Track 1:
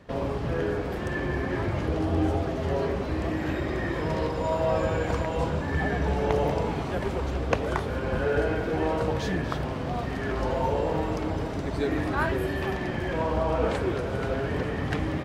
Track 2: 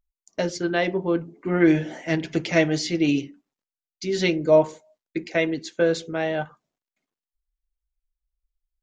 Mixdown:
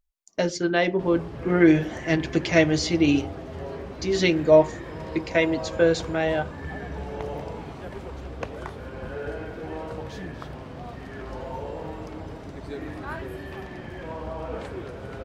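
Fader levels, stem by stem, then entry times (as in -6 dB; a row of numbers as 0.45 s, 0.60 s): -8.0 dB, +1.0 dB; 0.90 s, 0.00 s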